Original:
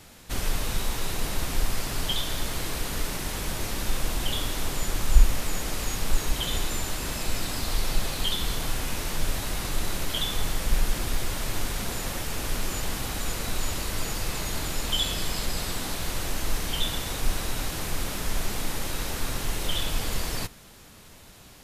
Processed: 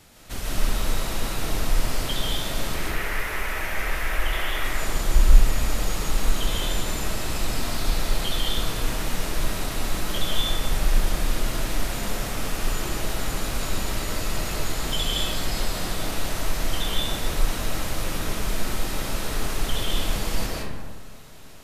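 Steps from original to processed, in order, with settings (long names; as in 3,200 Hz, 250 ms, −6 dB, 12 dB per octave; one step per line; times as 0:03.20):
0:02.74–0:04.65: octave-band graphic EQ 125/250/2,000/4,000/8,000 Hz −9/−8/+12/−7/−6 dB
comb and all-pass reverb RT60 1.6 s, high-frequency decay 0.4×, pre-delay 110 ms, DRR −4.5 dB
level −3 dB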